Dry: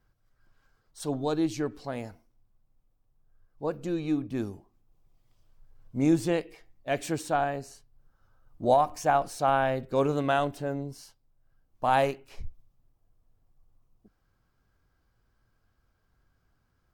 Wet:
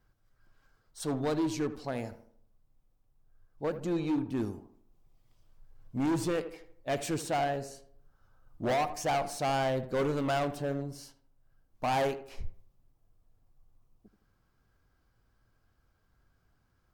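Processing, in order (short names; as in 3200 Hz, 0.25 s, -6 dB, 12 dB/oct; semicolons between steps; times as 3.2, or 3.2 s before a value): hard clip -26 dBFS, distortion -7 dB; on a send: tape echo 79 ms, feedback 48%, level -10 dB, low-pass 1500 Hz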